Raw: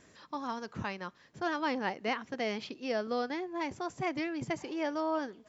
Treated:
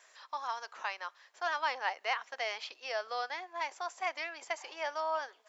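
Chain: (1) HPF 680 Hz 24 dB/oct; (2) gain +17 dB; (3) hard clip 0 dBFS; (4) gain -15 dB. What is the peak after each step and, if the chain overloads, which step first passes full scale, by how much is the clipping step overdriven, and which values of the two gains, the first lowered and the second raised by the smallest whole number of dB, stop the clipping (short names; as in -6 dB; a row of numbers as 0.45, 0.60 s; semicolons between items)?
-22.0, -5.0, -5.0, -20.0 dBFS; no overload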